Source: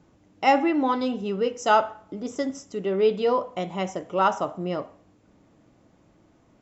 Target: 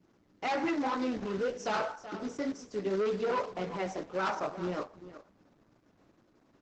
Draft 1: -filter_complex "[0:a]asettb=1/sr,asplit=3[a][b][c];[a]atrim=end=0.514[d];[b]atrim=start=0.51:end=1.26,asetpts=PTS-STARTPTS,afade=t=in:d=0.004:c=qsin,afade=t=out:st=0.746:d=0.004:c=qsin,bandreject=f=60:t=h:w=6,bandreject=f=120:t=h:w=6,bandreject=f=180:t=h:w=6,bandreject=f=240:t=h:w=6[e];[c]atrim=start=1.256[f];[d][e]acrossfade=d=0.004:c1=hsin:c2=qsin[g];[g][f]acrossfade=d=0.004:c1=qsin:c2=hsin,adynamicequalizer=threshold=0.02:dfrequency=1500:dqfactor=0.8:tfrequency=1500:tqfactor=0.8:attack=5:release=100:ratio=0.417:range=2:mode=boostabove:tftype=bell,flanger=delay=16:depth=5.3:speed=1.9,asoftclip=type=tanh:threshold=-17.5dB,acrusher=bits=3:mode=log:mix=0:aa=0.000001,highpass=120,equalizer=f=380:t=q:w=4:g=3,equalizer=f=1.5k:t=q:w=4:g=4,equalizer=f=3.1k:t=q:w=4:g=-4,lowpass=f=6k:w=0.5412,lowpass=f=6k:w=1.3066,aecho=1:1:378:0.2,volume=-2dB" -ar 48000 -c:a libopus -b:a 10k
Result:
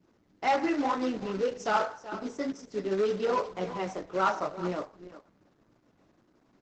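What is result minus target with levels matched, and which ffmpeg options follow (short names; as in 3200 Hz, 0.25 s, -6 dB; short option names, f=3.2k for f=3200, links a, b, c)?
soft clip: distortion -5 dB
-filter_complex "[0:a]asettb=1/sr,asplit=3[a][b][c];[a]atrim=end=0.514[d];[b]atrim=start=0.51:end=1.26,asetpts=PTS-STARTPTS,afade=t=in:d=0.004:c=qsin,afade=t=out:st=0.746:d=0.004:c=qsin,bandreject=f=60:t=h:w=6,bandreject=f=120:t=h:w=6,bandreject=f=180:t=h:w=6,bandreject=f=240:t=h:w=6[e];[c]atrim=start=1.256[f];[d][e]acrossfade=d=0.004:c1=hsin:c2=qsin[g];[g][f]acrossfade=d=0.004:c1=qsin:c2=hsin,adynamicequalizer=threshold=0.02:dfrequency=1500:dqfactor=0.8:tfrequency=1500:tqfactor=0.8:attack=5:release=100:ratio=0.417:range=2:mode=boostabove:tftype=bell,flanger=delay=16:depth=5.3:speed=1.9,asoftclip=type=tanh:threshold=-24.5dB,acrusher=bits=3:mode=log:mix=0:aa=0.000001,highpass=120,equalizer=f=380:t=q:w=4:g=3,equalizer=f=1.5k:t=q:w=4:g=4,equalizer=f=3.1k:t=q:w=4:g=-4,lowpass=f=6k:w=0.5412,lowpass=f=6k:w=1.3066,aecho=1:1:378:0.2,volume=-2dB" -ar 48000 -c:a libopus -b:a 10k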